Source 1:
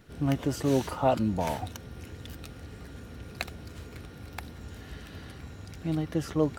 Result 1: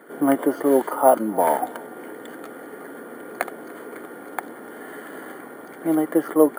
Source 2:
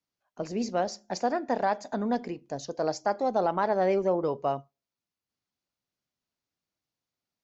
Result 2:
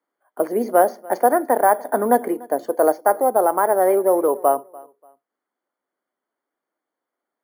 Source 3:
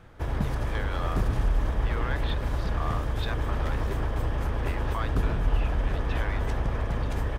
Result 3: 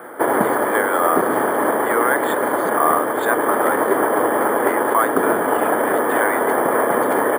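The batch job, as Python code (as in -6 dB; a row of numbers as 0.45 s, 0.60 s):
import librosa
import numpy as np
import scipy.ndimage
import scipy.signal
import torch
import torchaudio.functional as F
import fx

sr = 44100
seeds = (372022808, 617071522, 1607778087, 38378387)

y = scipy.signal.sosfilt(scipy.signal.butter(4, 300.0, 'highpass', fs=sr, output='sos'), x)
y = fx.rider(y, sr, range_db=3, speed_s=0.5)
y = scipy.signal.savgol_filter(y, 41, 4, mode='constant')
y = fx.echo_feedback(y, sr, ms=292, feedback_pct=27, wet_db=-23)
y = np.repeat(scipy.signal.resample_poly(y, 1, 4), 4)[:len(y)]
y = librosa.util.normalize(y) * 10.0 ** (-3 / 20.0)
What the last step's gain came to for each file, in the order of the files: +12.5 dB, +11.5 dB, +19.0 dB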